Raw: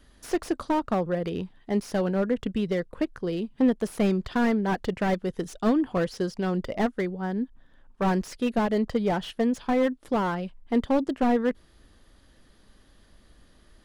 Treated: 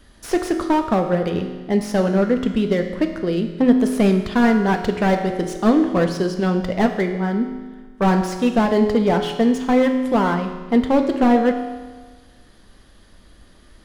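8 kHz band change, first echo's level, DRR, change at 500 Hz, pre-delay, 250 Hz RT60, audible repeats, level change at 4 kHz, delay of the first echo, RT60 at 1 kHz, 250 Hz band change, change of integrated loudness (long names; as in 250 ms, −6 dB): +7.5 dB, no echo audible, 5.0 dB, +7.5 dB, 7 ms, 1.4 s, no echo audible, +7.5 dB, no echo audible, 1.4 s, +8.0 dB, +8.0 dB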